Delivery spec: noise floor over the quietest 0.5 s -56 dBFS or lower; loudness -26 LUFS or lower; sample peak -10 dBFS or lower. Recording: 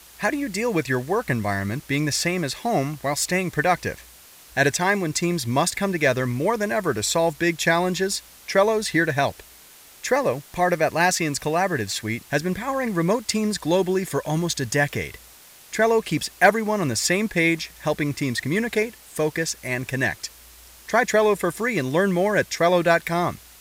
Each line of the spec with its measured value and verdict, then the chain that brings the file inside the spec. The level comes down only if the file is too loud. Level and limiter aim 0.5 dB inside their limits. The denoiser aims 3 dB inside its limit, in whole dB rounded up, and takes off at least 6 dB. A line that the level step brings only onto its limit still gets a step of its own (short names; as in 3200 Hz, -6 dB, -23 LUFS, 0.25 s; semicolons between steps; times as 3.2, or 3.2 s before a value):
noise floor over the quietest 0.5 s -48 dBFS: fail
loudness -22.5 LUFS: fail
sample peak -4.5 dBFS: fail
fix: denoiser 7 dB, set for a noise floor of -48 dBFS; gain -4 dB; limiter -10.5 dBFS